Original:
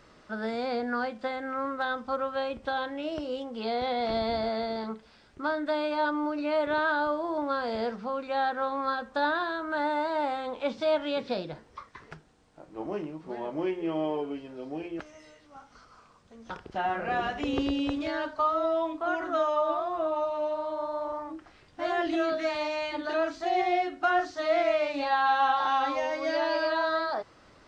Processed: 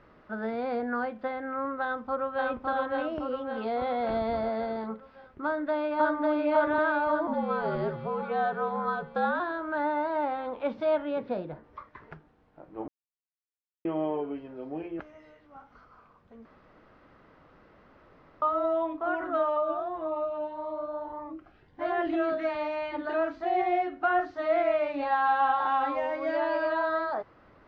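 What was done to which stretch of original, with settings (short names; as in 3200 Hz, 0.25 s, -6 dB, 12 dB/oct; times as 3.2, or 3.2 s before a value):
1.82–2.46 echo throw 0.56 s, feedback 55%, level -1 dB
5.44–6.23 echo throw 0.55 s, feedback 65%, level -1 dB
7.27–9.4 frequency shift -69 Hz
11.02–11.64 high shelf 2500 Hz -8.5 dB
12.88–13.85 mute
16.45–18.42 room tone
19.57–21.81 cascading phaser rising 1.7 Hz
whole clip: LPF 2000 Hz 12 dB/oct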